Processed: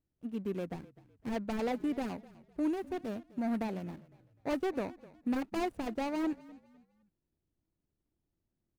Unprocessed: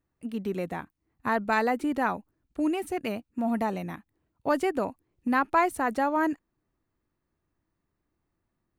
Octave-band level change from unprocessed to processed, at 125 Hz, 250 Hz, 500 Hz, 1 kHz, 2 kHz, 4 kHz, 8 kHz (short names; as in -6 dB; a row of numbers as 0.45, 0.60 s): -4.5, -4.5, -7.5, -13.5, -14.5, -5.0, -9.0 dB